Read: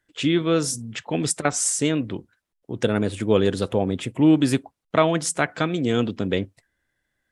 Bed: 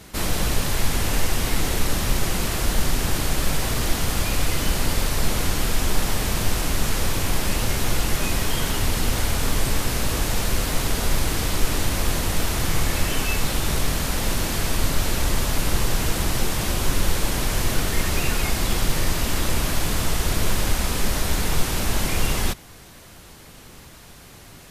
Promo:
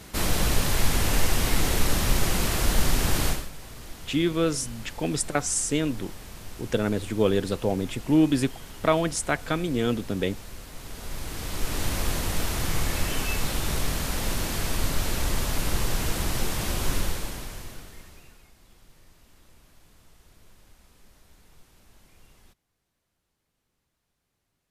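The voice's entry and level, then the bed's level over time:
3.90 s, -3.5 dB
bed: 3.29 s -1 dB
3.50 s -19 dB
10.72 s -19 dB
11.87 s -4.5 dB
16.96 s -4.5 dB
18.52 s -34 dB

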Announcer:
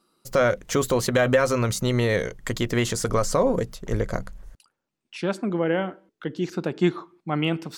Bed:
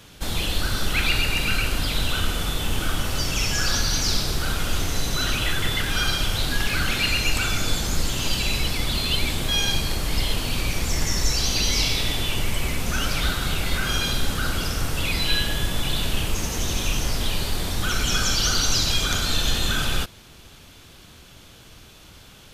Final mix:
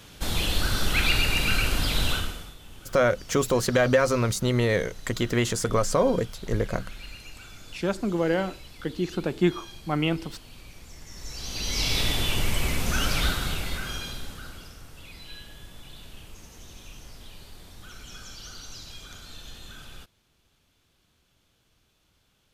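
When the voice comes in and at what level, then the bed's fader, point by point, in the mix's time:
2.60 s, -1.0 dB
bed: 2.12 s -1 dB
2.57 s -22 dB
11.04 s -22 dB
11.98 s -1 dB
13.23 s -1 dB
14.82 s -21 dB

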